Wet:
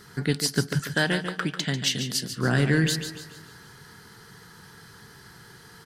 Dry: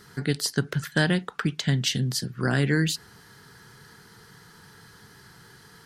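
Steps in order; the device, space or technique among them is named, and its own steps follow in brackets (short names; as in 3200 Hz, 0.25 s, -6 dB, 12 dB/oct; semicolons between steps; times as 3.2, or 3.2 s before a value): 0.79–2.33 HPF 320 Hz 6 dB/oct; parallel distortion (in parallel at -14 dB: hard clip -25 dBFS, distortion -7 dB); on the sum: feedback echo 0.143 s, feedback 40%, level -9.5 dB; feedback echo 0.154 s, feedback 57%, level -19 dB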